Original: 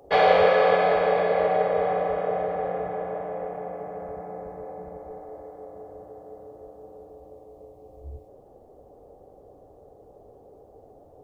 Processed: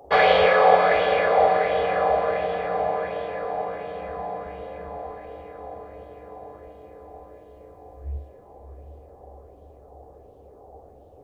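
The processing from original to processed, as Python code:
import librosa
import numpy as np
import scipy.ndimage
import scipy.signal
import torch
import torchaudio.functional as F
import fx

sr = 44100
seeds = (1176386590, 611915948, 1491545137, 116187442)

p1 = fx.peak_eq(x, sr, hz=71.0, db=10.0, octaves=0.25)
p2 = p1 + fx.echo_diffused(p1, sr, ms=736, feedback_pct=56, wet_db=-9.0, dry=0)
y = fx.bell_lfo(p2, sr, hz=1.4, low_hz=780.0, high_hz=3300.0, db=9)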